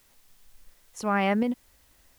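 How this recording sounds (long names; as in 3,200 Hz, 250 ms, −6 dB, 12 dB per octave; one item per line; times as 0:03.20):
tremolo saw up 1.4 Hz, depth 45%
a quantiser's noise floor 10 bits, dither triangular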